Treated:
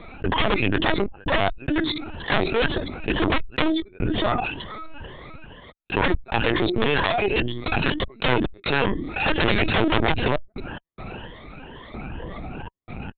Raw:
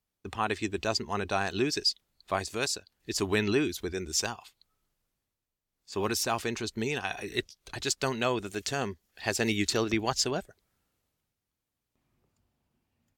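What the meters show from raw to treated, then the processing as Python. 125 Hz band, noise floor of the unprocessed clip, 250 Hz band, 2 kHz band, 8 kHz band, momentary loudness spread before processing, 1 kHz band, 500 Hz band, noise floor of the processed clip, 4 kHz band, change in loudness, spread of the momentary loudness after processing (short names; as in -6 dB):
+10.5 dB, under -85 dBFS, +8.5 dB, +10.0 dB, under -40 dB, 8 LU, +9.0 dB, +7.0 dB, -58 dBFS, +5.5 dB, +7.0 dB, 17 LU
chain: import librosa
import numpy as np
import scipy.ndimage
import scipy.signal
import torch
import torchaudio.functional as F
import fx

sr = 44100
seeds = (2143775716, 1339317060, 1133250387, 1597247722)

p1 = fx.spec_ripple(x, sr, per_octave=1.2, drift_hz=2.1, depth_db=22)
p2 = scipy.signal.sosfilt(scipy.signal.butter(2, 2800.0, 'lowpass', fs=sr, output='sos'), p1)
p3 = fx.hum_notches(p2, sr, base_hz=60, count=6)
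p4 = fx.level_steps(p3, sr, step_db=23)
p5 = p3 + F.gain(torch.from_numpy(p4), -2.5).numpy()
p6 = fx.step_gate(p5, sr, bpm=71, pattern='xxxxx.x.xxx', floor_db=-60.0, edge_ms=4.5)
p7 = fx.cheby_harmonics(p6, sr, harmonics=(3, 4, 6), levels_db=(-39, -25, -8), full_scale_db=-5.0)
p8 = fx.fold_sine(p7, sr, drive_db=13, ceiling_db=-4.0)
p9 = fx.lpc_vocoder(p8, sr, seeds[0], excitation='pitch_kept', order=16)
p10 = fx.env_flatten(p9, sr, amount_pct=70)
y = F.gain(torch.from_numpy(p10), -14.5).numpy()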